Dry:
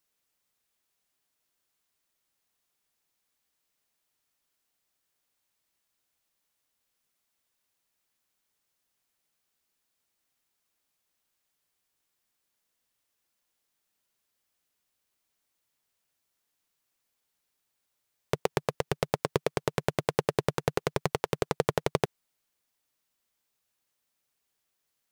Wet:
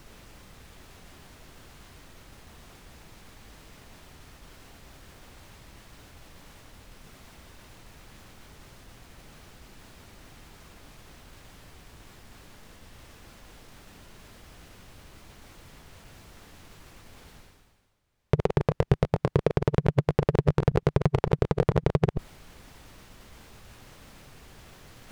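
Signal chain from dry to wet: chunks repeated in reverse 112 ms, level -14 dB; RIAA curve playback; reverse; upward compressor, threshold -35 dBFS; reverse; peak limiter -14.5 dBFS, peak gain reduction 10.5 dB; trim +7.5 dB

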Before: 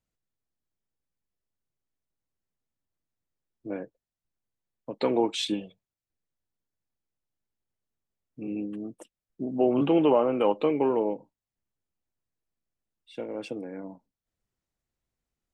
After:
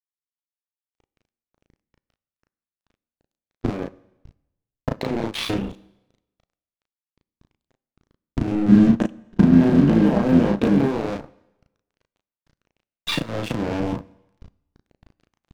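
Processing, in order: cycle switcher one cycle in 3, muted; recorder AGC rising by 73 dB/s; low-pass 6 kHz 24 dB/octave; tone controls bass +12 dB, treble -7 dB; compression 6:1, threshold -29 dBFS, peak gain reduction 18.5 dB; hard clipper -21 dBFS, distortion -19 dB; 8.68–10.88 s: small resonant body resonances 210/1600 Hz, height 14 dB, ringing for 45 ms; crossover distortion -39.5 dBFS; doubling 35 ms -3 dB; plate-style reverb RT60 0.99 s, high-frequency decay 0.95×, DRR 19.5 dB; trim +9 dB

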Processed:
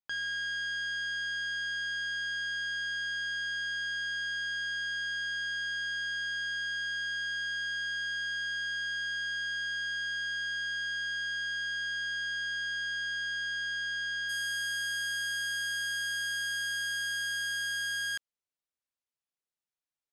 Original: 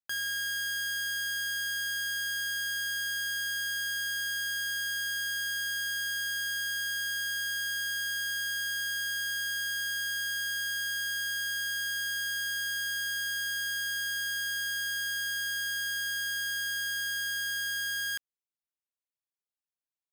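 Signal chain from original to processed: Bessel low-pass 4.1 kHz, order 6, from 14.28 s 8.5 kHz

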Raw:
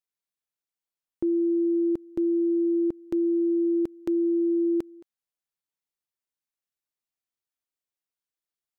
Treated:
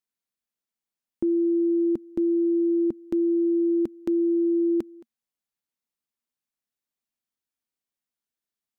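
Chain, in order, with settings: peaking EQ 230 Hz +10 dB 0.42 oct

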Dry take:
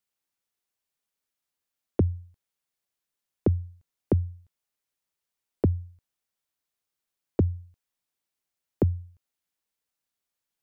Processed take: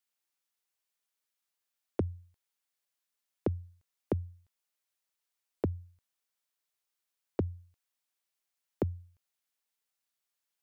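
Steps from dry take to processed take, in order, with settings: bass shelf 430 Hz -11 dB

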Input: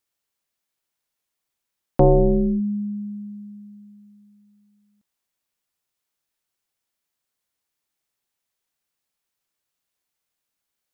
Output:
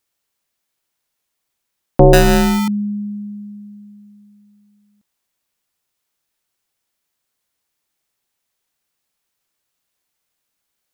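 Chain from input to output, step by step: 2.13–2.68 s: sample-rate reducer 1.1 kHz, jitter 0%; trim +6 dB

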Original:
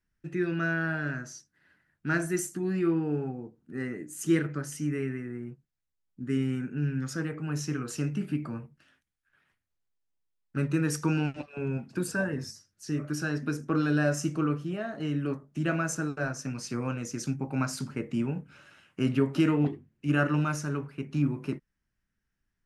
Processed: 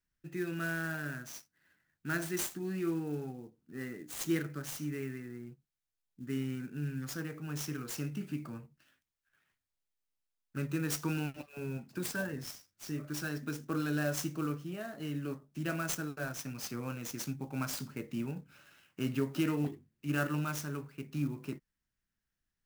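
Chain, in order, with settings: treble shelf 3.8 kHz +10 dB; sampling jitter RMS 0.023 ms; trim -7.5 dB

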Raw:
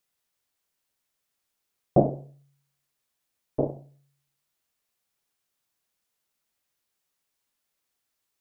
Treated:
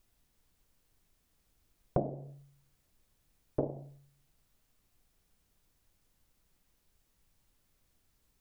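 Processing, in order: compression 6:1, threshold -32 dBFS, peak gain reduction 17.5 dB; added noise brown -76 dBFS; trim +3 dB

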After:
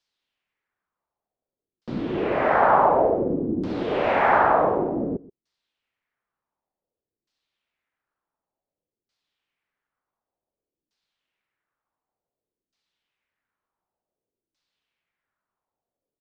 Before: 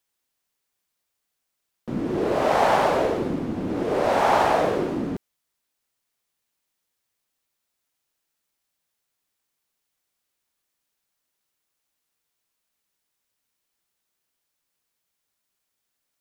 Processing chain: delay 128 ms -20.5 dB; LFO low-pass saw down 0.55 Hz 320–5000 Hz; trim -1.5 dB

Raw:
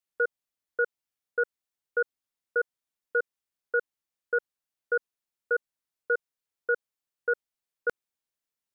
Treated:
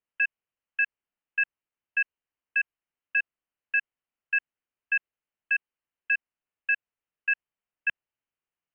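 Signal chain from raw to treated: frequency inversion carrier 3.1 kHz; trim +1 dB

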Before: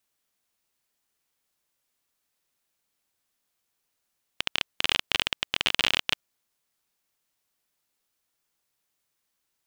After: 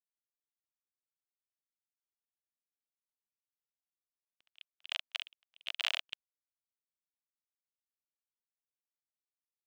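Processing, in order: gate -26 dBFS, range -39 dB; 4.43–6.08 s: elliptic high-pass 660 Hz, stop band 50 dB; trim -7.5 dB

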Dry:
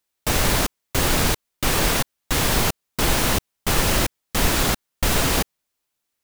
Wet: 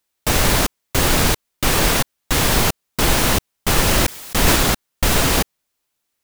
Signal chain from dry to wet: 3.86–4.56 s: decay stretcher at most 29 dB/s; trim +3.5 dB

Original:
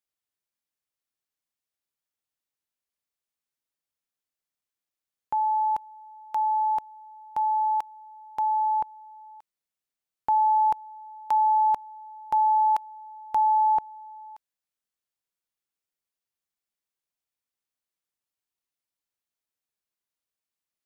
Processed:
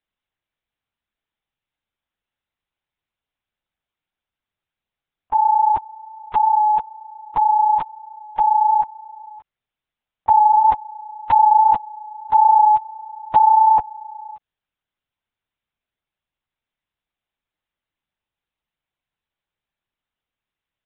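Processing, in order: LPC vocoder at 8 kHz whisper; trim +8.5 dB

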